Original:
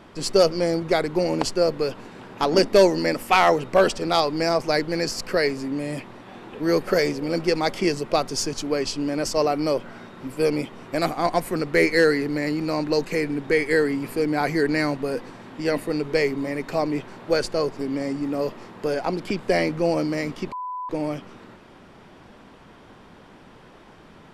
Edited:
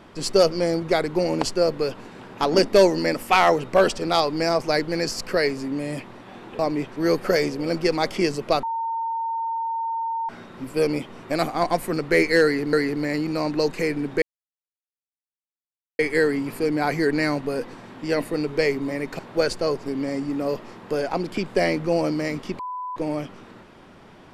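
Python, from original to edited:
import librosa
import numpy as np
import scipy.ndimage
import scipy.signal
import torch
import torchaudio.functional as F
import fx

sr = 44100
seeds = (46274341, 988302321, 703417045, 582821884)

y = fx.edit(x, sr, fx.bleep(start_s=8.26, length_s=1.66, hz=911.0, db=-23.5),
    fx.repeat(start_s=12.06, length_s=0.3, count=2),
    fx.insert_silence(at_s=13.55, length_s=1.77),
    fx.move(start_s=16.75, length_s=0.37, to_s=6.59), tone=tone)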